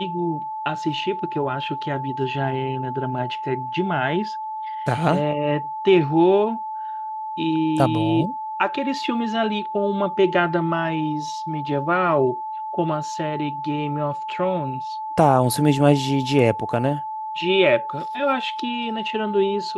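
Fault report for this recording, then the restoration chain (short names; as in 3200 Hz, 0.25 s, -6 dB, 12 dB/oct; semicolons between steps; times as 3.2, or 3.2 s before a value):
tone 870 Hz -27 dBFS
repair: notch 870 Hz, Q 30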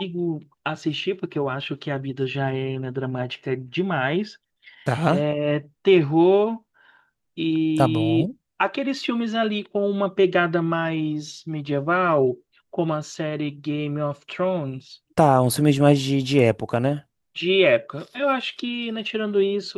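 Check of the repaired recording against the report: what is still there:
none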